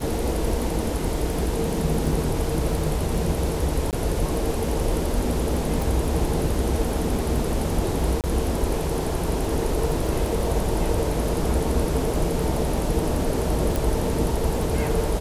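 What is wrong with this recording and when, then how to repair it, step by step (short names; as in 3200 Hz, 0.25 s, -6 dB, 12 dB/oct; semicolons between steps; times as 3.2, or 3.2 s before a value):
crackle 28/s -30 dBFS
3.91–3.93 gap 18 ms
5.82 pop
8.21–8.24 gap 28 ms
13.76 pop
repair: de-click; interpolate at 3.91, 18 ms; interpolate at 8.21, 28 ms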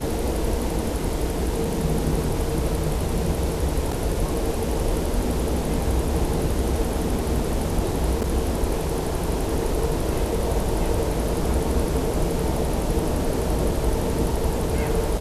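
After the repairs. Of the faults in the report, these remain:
5.82 pop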